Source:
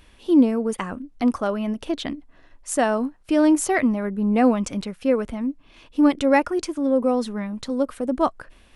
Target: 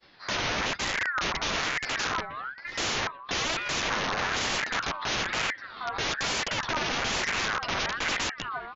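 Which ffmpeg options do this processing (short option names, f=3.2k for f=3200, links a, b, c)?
-filter_complex "[0:a]highpass=f=65:w=0.5412,highpass=f=65:w=1.3066,agate=range=-33dB:threshold=-50dB:ratio=3:detection=peak,asplit=2[a][b];[b]acompressor=threshold=-27dB:ratio=20,volume=0.5dB[c];[a][c]amix=inputs=2:normalize=0,highpass=f=160:t=q:w=0.5412,highpass=f=160:t=q:w=1.307,lowpass=f=3.5k:t=q:w=0.5176,lowpass=f=3.5k:t=q:w=0.7071,lowpass=f=3.5k:t=q:w=1.932,afreqshift=-150,acontrast=82,flanger=delay=9.6:depth=3.7:regen=25:speed=0.24:shape=triangular,aecho=1:1:754|1508|2262:0.158|0.0586|0.0217,aresample=11025,aeval=exprs='(mod(11.2*val(0)+1,2)-1)/11.2':c=same,aresample=44100,aeval=exprs='val(0)*sin(2*PI*1500*n/s+1500*0.3/1.1*sin(2*PI*1.1*n/s))':c=same"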